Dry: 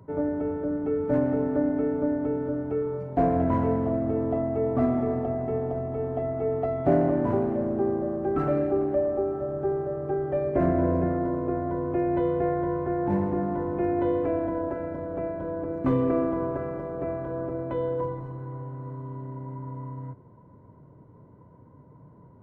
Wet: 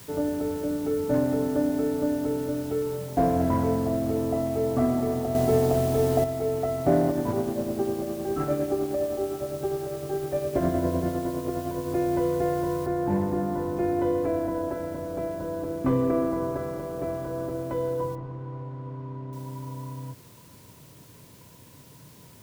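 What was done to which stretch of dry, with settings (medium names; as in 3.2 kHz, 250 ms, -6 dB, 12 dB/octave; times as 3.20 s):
5.35–6.24 s: gain +7 dB
7.09–11.91 s: tremolo 9.8 Hz, depth 46%
12.86 s: noise floor step -48 dB -55 dB
18.15–19.33 s: low-pass 1.9 kHz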